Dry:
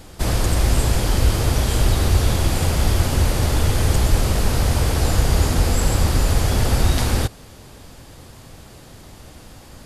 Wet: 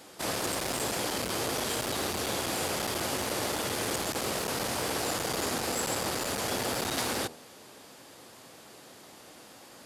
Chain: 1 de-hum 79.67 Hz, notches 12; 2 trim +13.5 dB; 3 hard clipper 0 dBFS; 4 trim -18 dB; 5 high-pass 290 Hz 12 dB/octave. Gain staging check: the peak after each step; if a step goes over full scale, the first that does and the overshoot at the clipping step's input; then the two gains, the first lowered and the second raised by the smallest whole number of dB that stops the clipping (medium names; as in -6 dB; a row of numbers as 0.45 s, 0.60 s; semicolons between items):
-4.5 dBFS, +9.0 dBFS, 0.0 dBFS, -18.0 dBFS, -16.0 dBFS; step 2, 9.0 dB; step 2 +4.5 dB, step 4 -9 dB